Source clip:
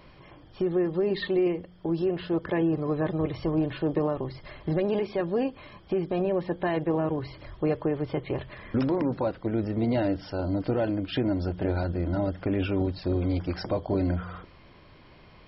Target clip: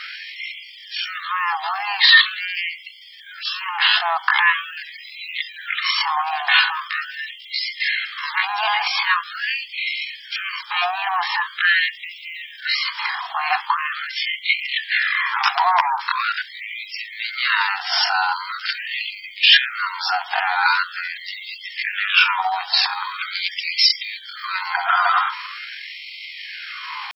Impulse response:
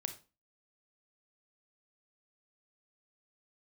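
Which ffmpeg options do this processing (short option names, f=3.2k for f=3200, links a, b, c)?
-af "apsyclip=32dB,atempo=0.57,afftfilt=real='re*gte(b*sr/1024,670*pow(2000/670,0.5+0.5*sin(2*PI*0.43*pts/sr)))':imag='im*gte(b*sr/1024,670*pow(2000/670,0.5+0.5*sin(2*PI*0.43*pts/sr)))':win_size=1024:overlap=0.75,volume=-4dB"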